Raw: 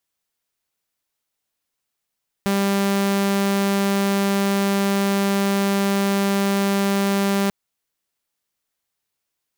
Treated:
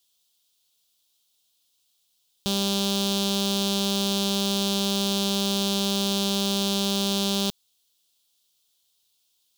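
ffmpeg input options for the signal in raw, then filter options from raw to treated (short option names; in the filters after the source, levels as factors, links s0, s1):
-f lavfi -i "aevalsrc='0.178*(2*mod(198*t,1)-1)':d=5.04:s=44100"
-af "highshelf=f=2600:t=q:w=3:g=9.5,alimiter=limit=0.398:level=0:latency=1:release=18,asoftclip=type=tanh:threshold=0.251"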